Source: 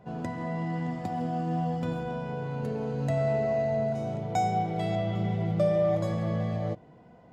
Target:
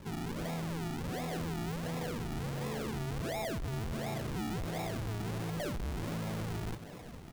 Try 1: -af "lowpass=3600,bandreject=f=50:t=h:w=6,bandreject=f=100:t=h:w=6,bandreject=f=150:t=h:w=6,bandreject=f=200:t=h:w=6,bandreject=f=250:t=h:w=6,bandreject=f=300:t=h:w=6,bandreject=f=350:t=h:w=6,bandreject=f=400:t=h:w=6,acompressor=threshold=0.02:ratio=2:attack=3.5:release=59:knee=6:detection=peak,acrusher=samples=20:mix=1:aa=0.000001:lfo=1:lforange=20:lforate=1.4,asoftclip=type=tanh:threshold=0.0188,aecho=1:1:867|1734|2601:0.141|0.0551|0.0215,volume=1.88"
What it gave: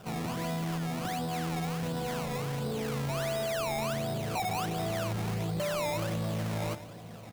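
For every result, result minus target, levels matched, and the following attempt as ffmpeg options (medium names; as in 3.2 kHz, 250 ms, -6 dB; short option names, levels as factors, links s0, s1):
echo 405 ms early; decimation with a swept rate: distortion -9 dB; saturation: distortion -4 dB
-af "lowpass=3600,bandreject=f=50:t=h:w=6,bandreject=f=100:t=h:w=6,bandreject=f=150:t=h:w=6,bandreject=f=200:t=h:w=6,bandreject=f=250:t=h:w=6,bandreject=f=300:t=h:w=6,bandreject=f=350:t=h:w=6,bandreject=f=400:t=h:w=6,acompressor=threshold=0.02:ratio=2:attack=3.5:release=59:knee=6:detection=peak,acrusher=samples=20:mix=1:aa=0.000001:lfo=1:lforange=20:lforate=1.4,asoftclip=type=tanh:threshold=0.0188,aecho=1:1:1272|2544|3816:0.141|0.0551|0.0215,volume=1.88"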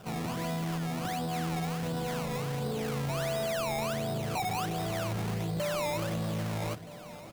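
decimation with a swept rate: distortion -9 dB; saturation: distortion -4 dB
-af "lowpass=3600,bandreject=f=50:t=h:w=6,bandreject=f=100:t=h:w=6,bandreject=f=150:t=h:w=6,bandreject=f=200:t=h:w=6,bandreject=f=250:t=h:w=6,bandreject=f=300:t=h:w=6,bandreject=f=350:t=h:w=6,bandreject=f=400:t=h:w=6,acompressor=threshold=0.02:ratio=2:attack=3.5:release=59:knee=6:detection=peak,acrusher=samples=57:mix=1:aa=0.000001:lfo=1:lforange=57:lforate=1.4,asoftclip=type=tanh:threshold=0.0188,aecho=1:1:1272|2544|3816:0.141|0.0551|0.0215,volume=1.88"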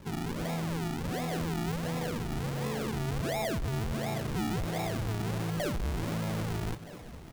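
saturation: distortion -4 dB
-af "lowpass=3600,bandreject=f=50:t=h:w=6,bandreject=f=100:t=h:w=6,bandreject=f=150:t=h:w=6,bandreject=f=200:t=h:w=6,bandreject=f=250:t=h:w=6,bandreject=f=300:t=h:w=6,bandreject=f=350:t=h:w=6,bandreject=f=400:t=h:w=6,acompressor=threshold=0.02:ratio=2:attack=3.5:release=59:knee=6:detection=peak,acrusher=samples=57:mix=1:aa=0.000001:lfo=1:lforange=57:lforate=1.4,asoftclip=type=tanh:threshold=0.00944,aecho=1:1:1272|2544|3816:0.141|0.0551|0.0215,volume=1.88"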